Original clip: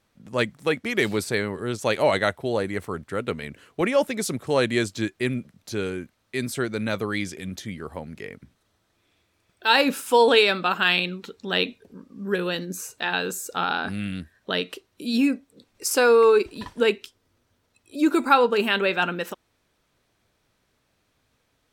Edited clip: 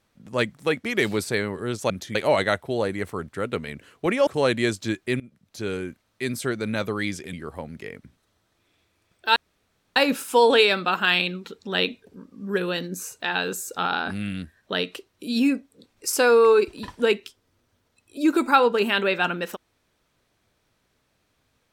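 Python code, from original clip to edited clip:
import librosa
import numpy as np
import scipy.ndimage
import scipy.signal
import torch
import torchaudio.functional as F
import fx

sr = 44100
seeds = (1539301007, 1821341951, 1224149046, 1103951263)

y = fx.edit(x, sr, fx.cut(start_s=4.02, length_s=0.38),
    fx.fade_in_from(start_s=5.33, length_s=0.56, floor_db=-21.0),
    fx.move(start_s=7.46, length_s=0.25, to_s=1.9),
    fx.insert_room_tone(at_s=9.74, length_s=0.6), tone=tone)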